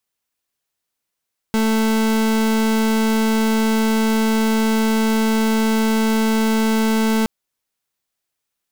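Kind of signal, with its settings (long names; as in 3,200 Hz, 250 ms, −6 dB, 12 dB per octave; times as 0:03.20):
pulse wave 221 Hz, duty 37% −17 dBFS 5.72 s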